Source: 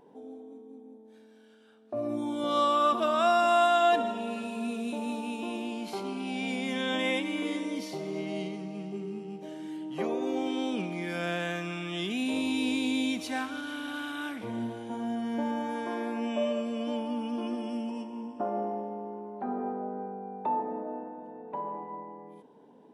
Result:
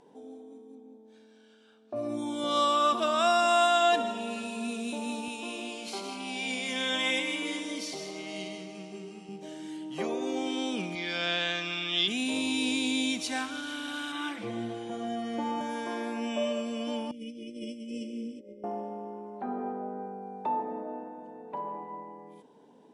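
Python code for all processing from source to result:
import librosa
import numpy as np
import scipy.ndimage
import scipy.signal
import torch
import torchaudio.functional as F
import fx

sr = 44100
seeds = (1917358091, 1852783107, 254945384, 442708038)

y = fx.chain(x, sr, fx.air_absorb(metres=63.0),
    fx.notch(hz=1900.0, q=15.0), at=(0.75, 1.96))
y = fx.chain(y, sr, fx.low_shelf(hz=240.0, db=-11.0),
    fx.echo_single(ms=157, db=-7.0), at=(5.28, 9.29))
y = fx.chain(y, sr, fx.lowpass_res(hz=4100.0, q=3.1),
    fx.peak_eq(hz=64.0, db=-10.5, octaves=3.0), at=(10.95, 12.08))
y = fx.chain(y, sr, fx.lowpass(hz=3900.0, slope=6),
    fx.comb(ms=5.9, depth=0.95), at=(14.12, 15.61))
y = fx.chain(y, sr, fx.notch_comb(f0_hz=910.0),
    fx.over_compress(threshold_db=-37.0, ratio=-0.5),
    fx.brickwall_bandstop(low_hz=600.0, high_hz=1900.0), at=(17.11, 18.64))
y = scipy.signal.sosfilt(scipy.signal.butter(4, 9400.0, 'lowpass', fs=sr, output='sos'), y)
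y = fx.high_shelf(y, sr, hz=3300.0, db=11.5)
y = F.gain(torch.from_numpy(y), -1.5).numpy()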